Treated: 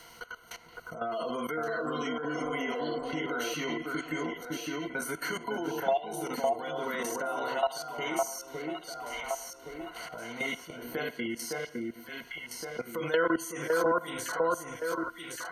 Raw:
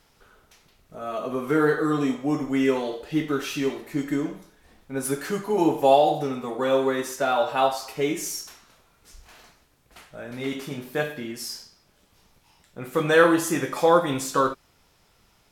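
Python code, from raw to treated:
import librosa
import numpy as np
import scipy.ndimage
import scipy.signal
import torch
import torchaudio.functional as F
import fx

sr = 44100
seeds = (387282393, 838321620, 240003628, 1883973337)

p1 = fx.ripple_eq(x, sr, per_octave=1.9, db=14)
p2 = fx.spec_repair(p1, sr, seeds[0], start_s=2.11, length_s=0.68, low_hz=450.0, high_hz=1100.0, source='both')
p3 = fx.low_shelf(p2, sr, hz=440.0, db=-9.5)
p4 = fx.spec_gate(p3, sr, threshold_db=-30, keep='strong')
p5 = fx.level_steps(p4, sr, step_db=18)
p6 = p5 + fx.echo_alternate(p5, sr, ms=559, hz=1700.0, feedback_pct=53, wet_db=-2.5, dry=0)
y = fx.band_squash(p6, sr, depth_pct=70)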